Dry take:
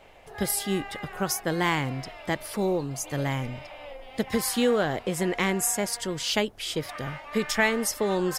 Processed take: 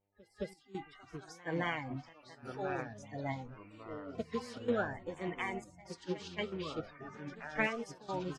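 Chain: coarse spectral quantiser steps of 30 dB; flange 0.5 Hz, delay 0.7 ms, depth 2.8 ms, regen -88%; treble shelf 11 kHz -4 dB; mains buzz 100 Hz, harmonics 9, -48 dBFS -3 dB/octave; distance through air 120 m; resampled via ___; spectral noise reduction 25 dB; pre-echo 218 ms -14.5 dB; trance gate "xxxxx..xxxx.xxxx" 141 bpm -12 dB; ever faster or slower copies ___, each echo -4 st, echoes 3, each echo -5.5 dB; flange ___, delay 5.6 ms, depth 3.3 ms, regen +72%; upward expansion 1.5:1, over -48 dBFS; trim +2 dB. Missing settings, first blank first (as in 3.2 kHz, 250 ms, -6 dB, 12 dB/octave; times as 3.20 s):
32 kHz, 621 ms, 1.9 Hz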